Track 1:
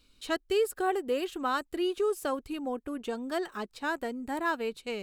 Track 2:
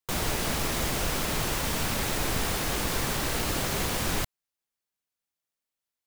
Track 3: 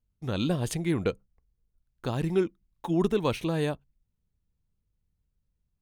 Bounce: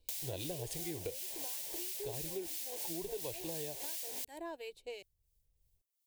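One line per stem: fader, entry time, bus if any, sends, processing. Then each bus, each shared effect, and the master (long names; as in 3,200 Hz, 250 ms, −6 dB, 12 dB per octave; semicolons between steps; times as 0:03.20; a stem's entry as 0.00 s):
−3.5 dB, 0.00 s, bus A, no send, no processing
−6.5 dB, 0.00 s, bus A, no send, high-pass filter 130 Hz; spectral tilt +4 dB per octave
+3.0 dB, 0.00 s, no bus, no send, automatic ducking −7 dB, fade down 1.75 s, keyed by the first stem
bus A: 0.0 dB, two-band tremolo in antiphase 2.9 Hz, depth 70%, crossover 1,300 Hz; downward compressor 3 to 1, threshold −33 dBFS, peak gain reduction 7.5 dB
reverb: not used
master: phaser with its sweep stopped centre 530 Hz, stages 4; downward compressor, threshold −38 dBFS, peak gain reduction 13.5 dB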